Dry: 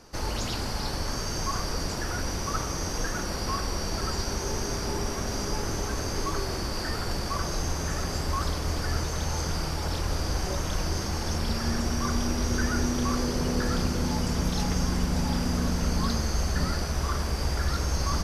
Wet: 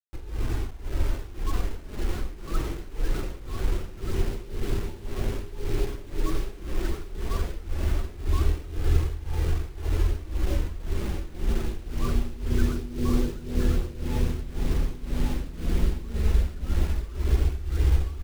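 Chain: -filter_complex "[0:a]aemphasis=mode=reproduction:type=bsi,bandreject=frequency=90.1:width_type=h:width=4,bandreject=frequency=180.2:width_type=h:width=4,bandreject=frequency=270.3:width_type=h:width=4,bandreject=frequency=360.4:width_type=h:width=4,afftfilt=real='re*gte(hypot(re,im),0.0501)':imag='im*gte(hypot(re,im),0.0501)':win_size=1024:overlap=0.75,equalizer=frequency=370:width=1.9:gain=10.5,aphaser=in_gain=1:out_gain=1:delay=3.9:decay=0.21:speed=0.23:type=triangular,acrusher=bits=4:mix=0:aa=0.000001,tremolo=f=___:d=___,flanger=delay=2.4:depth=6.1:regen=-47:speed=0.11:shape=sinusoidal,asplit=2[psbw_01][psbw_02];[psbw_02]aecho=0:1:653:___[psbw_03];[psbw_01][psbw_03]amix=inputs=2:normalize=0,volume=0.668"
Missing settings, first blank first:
1.9, 0.88, 0.211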